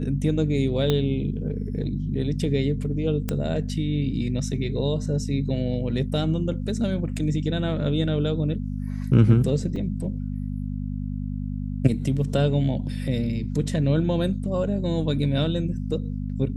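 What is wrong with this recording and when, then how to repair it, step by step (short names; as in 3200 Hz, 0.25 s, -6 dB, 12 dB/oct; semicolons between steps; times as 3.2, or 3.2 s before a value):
hum 50 Hz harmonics 5 -29 dBFS
0.9 pop -10 dBFS
3.29 pop -12 dBFS
9.76 gap 3.4 ms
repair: de-click; de-hum 50 Hz, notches 5; interpolate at 9.76, 3.4 ms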